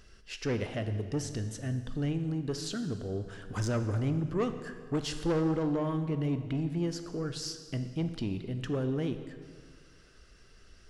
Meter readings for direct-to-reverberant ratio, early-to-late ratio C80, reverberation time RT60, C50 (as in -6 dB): 8.5 dB, 11.0 dB, 1.8 s, 10.0 dB